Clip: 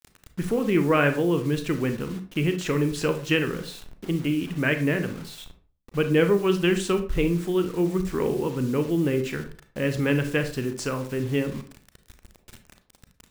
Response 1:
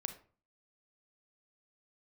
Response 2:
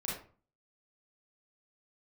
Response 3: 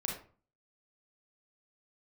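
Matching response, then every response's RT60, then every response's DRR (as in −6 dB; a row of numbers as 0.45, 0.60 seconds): 1; 0.40, 0.40, 0.40 seconds; 7.5, −6.0, −1.5 decibels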